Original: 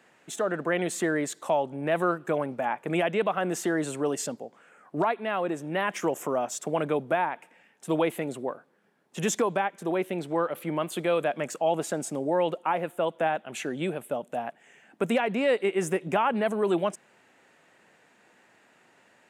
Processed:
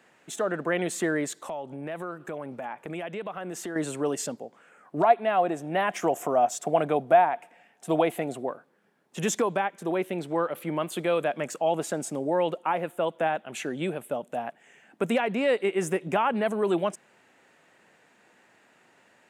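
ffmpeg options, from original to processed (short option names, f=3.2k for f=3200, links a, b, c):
-filter_complex "[0:a]asettb=1/sr,asplit=3[a][b][c];[a]atrim=end=1.404[d];[b]atrim=start=1.4:end=3.76,asetpts=PTS-STARTPTS,afade=t=in:d=0.004:c=qsin,afade=t=out:st=2.356:d=0.004:c=qsin,acompressor=threshold=-35dB:ratio=2.5:attack=3.2:release=140:knee=1:detection=peak[e];[c]atrim=start=3.756[f];[d][e]acrossfade=d=0.004:c1=hsin:c2=qsin[g];[g][f]acrossfade=d=0.004:c1=qsin:c2=hsin,asettb=1/sr,asplit=3[h][i][j];[h]atrim=end=5.034[k];[i]atrim=start=5.03:end=8.46,asetpts=PTS-STARTPTS,afade=t=in:d=0.004:c=qsin,afade=t=out:st=3.426:d=0.004:c=qsin,equalizer=f=710:w=6:g=13[l];[j]atrim=start=8.456[m];[k][l]acrossfade=d=0.004:c1=hsin:c2=qsin[n];[n][m]acrossfade=d=0.004:c1=qsin:c2=hsin"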